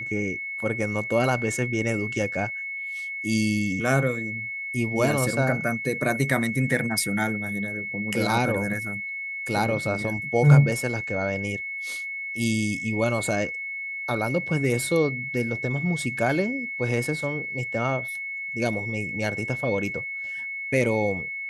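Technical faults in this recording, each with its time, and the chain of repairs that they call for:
whine 2.2 kHz -30 dBFS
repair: band-stop 2.2 kHz, Q 30

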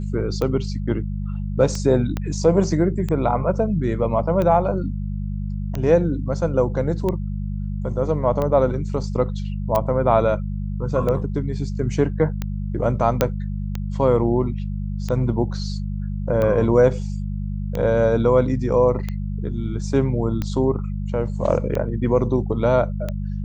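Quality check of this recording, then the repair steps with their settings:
hum 50 Hz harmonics 4 -26 dBFS
tick 45 rpm -13 dBFS
2.17 s: pop -12 dBFS
9.76 s: pop -8 dBFS
13.21 s: pop -3 dBFS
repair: de-click; de-hum 50 Hz, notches 4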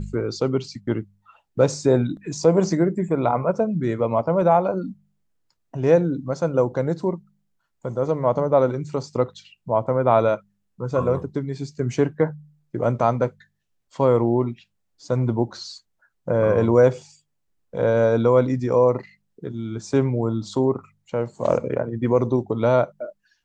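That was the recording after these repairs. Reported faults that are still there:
2.17 s: pop

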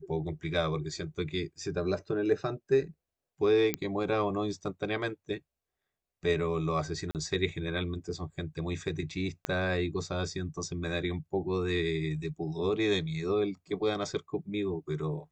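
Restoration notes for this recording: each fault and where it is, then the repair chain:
3.74 s: pop -12 dBFS
7.11–7.15 s: dropout 38 ms
9.45 s: pop -16 dBFS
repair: de-click; interpolate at 7.11 s, 38 ms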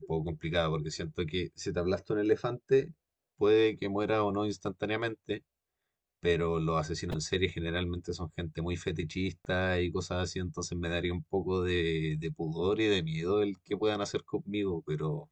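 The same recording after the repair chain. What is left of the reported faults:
3.74 s: pop
9.45 s: pop

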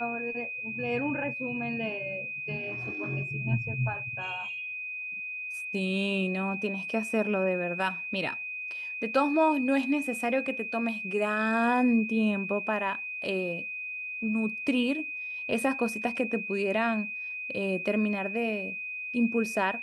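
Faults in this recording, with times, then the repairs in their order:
whine 2.5 kHz -34 dBFS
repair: band-stop 2.5 kHz, Q 30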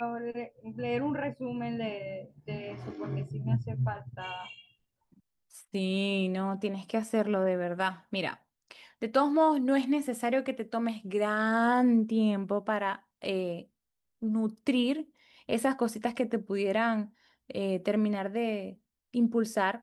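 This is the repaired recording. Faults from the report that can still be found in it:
nothing left

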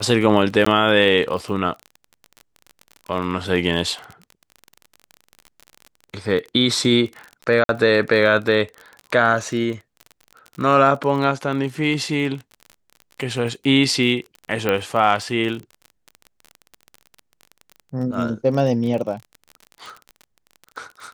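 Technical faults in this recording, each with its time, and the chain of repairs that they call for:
crackle 32 per s -28 dBFS
0.65–0.66 s: dropout 14 ms
7.64–7.69 s: dropout 52 ms
14.69 s: pop -8 dBFS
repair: de-click; interpolate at 0.65 s, 14 ms; interpolate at 7.64 s, 52 ms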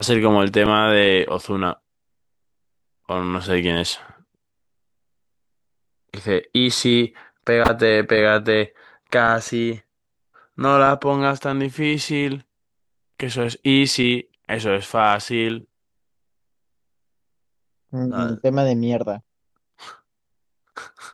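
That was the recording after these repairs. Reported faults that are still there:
nothing left

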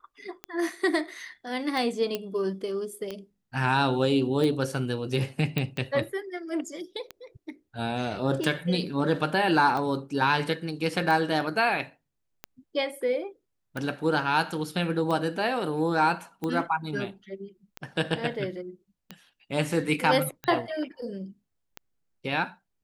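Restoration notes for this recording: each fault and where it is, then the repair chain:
tick 45 rpm -19 dBFS
2.15 s: pop -15 dBFS
5.58 s: pop -14 dBFS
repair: de-click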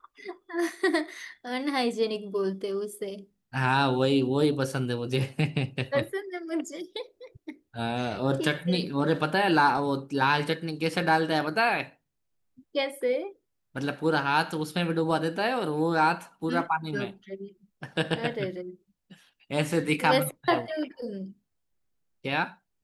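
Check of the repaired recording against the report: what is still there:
nothing left

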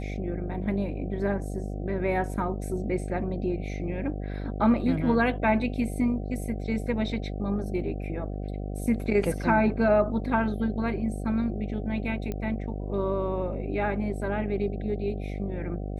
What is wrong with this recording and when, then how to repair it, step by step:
buzz 50 Hz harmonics 15 -33 dBFS
12.32 s: pop -20 dBFS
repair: de-click; de-hum 50 Hz, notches 15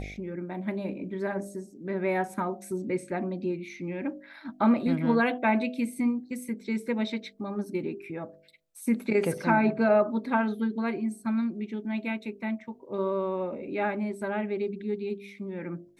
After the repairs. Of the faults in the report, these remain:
12.32 s: pop

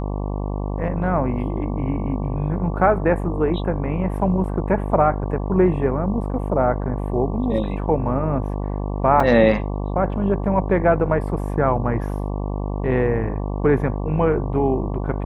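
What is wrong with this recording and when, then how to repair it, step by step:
buzz 50 Hz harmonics 23 -25 dBFS
9.20 s: dropout 3.4 ms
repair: de-hum 50 Hz, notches 23; interpolate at 9.20 s, 3.4 ms

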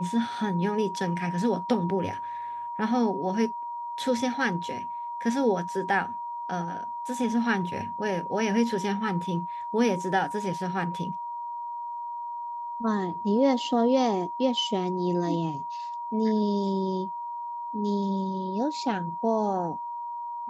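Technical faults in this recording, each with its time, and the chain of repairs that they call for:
whine 950 Hz -32 dBFS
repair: band-stop 950 Hz, Q 30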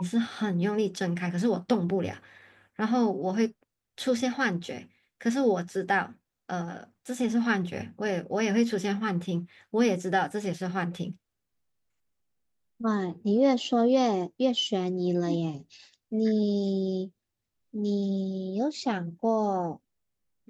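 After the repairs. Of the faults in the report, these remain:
nothing left

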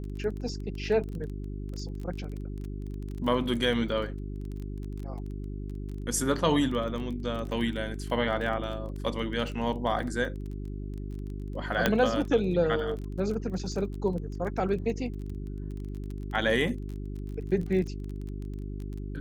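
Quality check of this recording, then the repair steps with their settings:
crackle 22 per s -35 dBFS
hum 50 Hz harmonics 8 -36 dBFS
11.86 s: pop -8 dBFS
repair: de-click; de-hum 50 Hz, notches 8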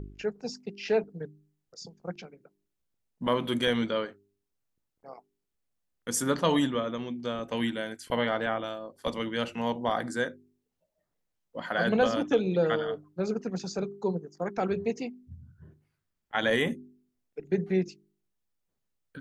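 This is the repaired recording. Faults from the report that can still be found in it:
nothing left

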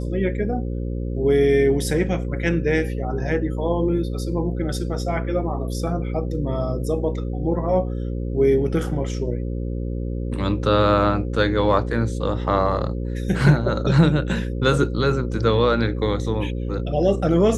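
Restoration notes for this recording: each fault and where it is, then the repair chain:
buzz 60 Hz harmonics 9 -26 dBFS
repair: de-hum 60 Hz, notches 9

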